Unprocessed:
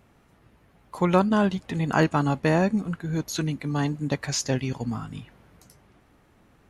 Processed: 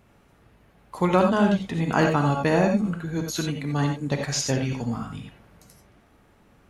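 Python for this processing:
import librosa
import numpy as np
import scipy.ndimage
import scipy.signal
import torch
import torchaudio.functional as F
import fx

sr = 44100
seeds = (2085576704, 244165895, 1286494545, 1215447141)

y = fx.rev_gated(x, sr, seeds[0], gate_ms=110, shape='rising', drr_db=3.0)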